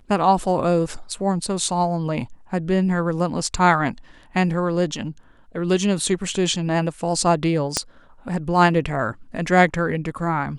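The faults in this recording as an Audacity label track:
7.770000	7.770000	pop -5 dBFS

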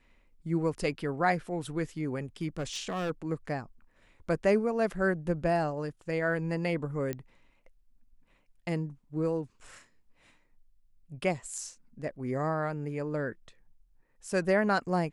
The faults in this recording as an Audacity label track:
2.580000	3.110000	clipped -29 dBFS
7.130000	7.130000	pop -20 dBFS

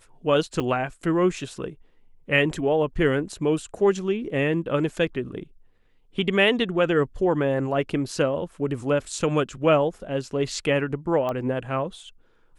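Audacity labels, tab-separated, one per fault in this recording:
0.600000	0.610000	dropout 5.1 ms
11.290000	11.290000	pop -17 dBFS

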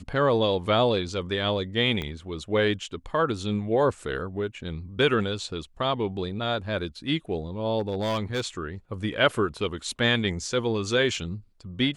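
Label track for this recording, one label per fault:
2.020000	2.020000	pop -18 dBFS
7.790000	8.470000	clipped -22.5 dBFS

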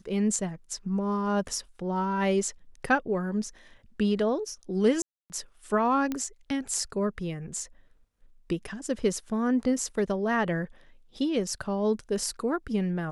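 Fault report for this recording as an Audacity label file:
5.020000	5.300000	dropout 279 ms
6.120000	6.120000	pop -17 dBFS

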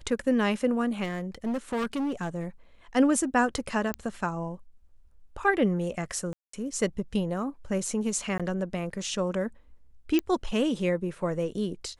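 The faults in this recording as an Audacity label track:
1.030000	2.450000	clipped -26 dBFS
3.940000	3.940000	pop -15 dBFS
6.330000	6.530000	dropout 204 ms
8.380000	8.400000	dropout 16 ms
10.190000	10.190000	pop -13 dBFS

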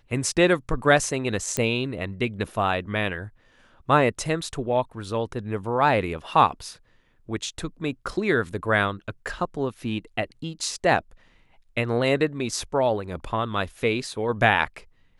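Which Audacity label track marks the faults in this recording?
1.570000	1.570000	pop -10 dBFS

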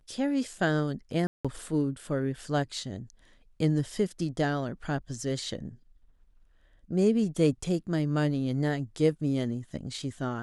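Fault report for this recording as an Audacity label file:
1.270000	1.450000	dropout 176 ms

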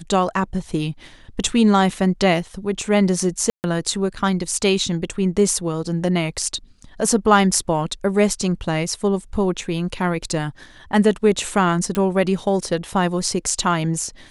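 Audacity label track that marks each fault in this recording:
3.500000	3.640000	dropout 139 ms
11.950000	11.950000	pop -9 dBFS

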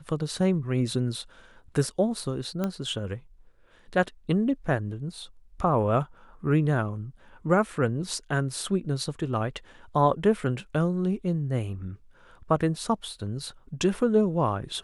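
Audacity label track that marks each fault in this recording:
2.640000	2.640000	pop -16 dBFS

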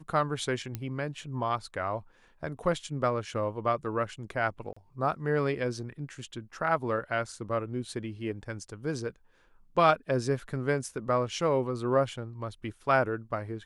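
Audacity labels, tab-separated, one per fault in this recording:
0.750000	0.750000	pop -19 dBFS
4.730000	4.760000	dropout 35 ms

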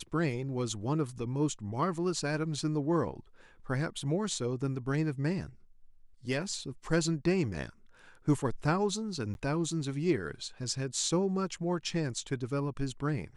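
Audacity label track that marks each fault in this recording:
9.340000	9.350000	dropout 11 ms

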